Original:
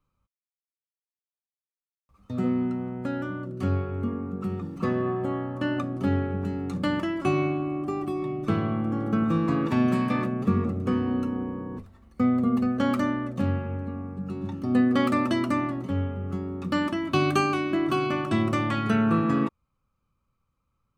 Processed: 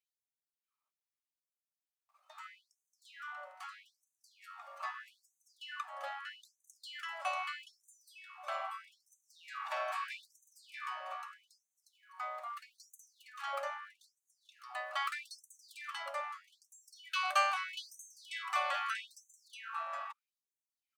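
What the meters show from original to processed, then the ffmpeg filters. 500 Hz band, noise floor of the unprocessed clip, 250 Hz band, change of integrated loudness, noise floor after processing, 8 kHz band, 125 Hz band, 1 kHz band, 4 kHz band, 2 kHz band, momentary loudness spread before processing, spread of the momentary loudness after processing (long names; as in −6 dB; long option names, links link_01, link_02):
−19.0 dB, below −85 dBFS, below −40 dB, −13.0 dB, below −85 dBFS, can't be measured, below −40 dB, −7.0 dB, −5.0 dB, −6.0 dB, 9 LU, 22 LU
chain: -af "aeval=exprs='if(lt(val(0),0),0.708*val(0),val(0))':channel_layout=same,aecho=1:1:637:0.631,afftfilt=real='re*gte(b*sr/1024,520*pow(6100/520,0.5+0.5*sin(2*PI*0.79*pts/sr)))':imag='im*gte(b*sr/1024,520*pow(6100/520,0.5+0.5*sin(2*PI*0.79*pts/sr)))':win_size=1024:overlap=0.75,volume=-3.5dB"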